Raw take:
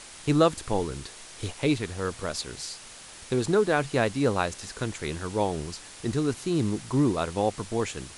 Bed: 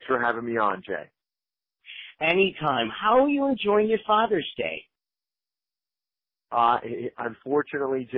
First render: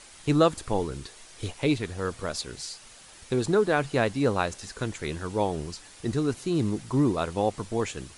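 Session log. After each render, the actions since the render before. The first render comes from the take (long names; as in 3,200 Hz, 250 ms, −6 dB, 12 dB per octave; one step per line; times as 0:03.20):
broadband denoise 6 dB, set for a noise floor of −46 dBFS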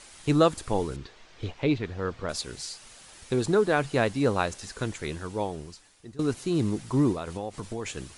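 0:00.96–0:02.29: high-frequency loss of the air 170 metres
0:04.90–0:06.19: fade out, to −20.5 dB
0:07.13–0:07.86: downward compressor, threshold −29 dBFS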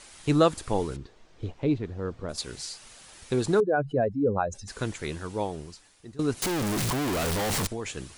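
0:00.97–0:02.38: drawn EQ curve 330 Hz 0 dB, 2,200 Hz −10 dB, 4,600 Hz −9 dB, 9,500 Hz −5 dB
0:03.60–0:04.68: expanding power law on the bin magnitudes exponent 2.4
0:06.42–0:07.67: sign of each sample alone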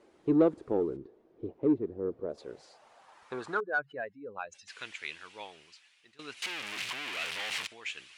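band-pass filter sweep 370 Hz → 2,600 Hz, 0:02.08–0:04.32
in parallel at −4.5 dB: soft clipping −27 dBFS, distortion −10 dB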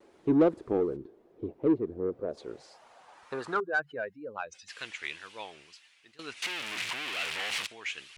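tape wow and flutter 100 cents
in parallel at −9 dB: soft clipping −28.5 dBFS, distortion −7 dB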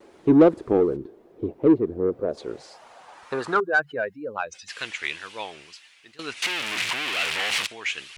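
level +8 dB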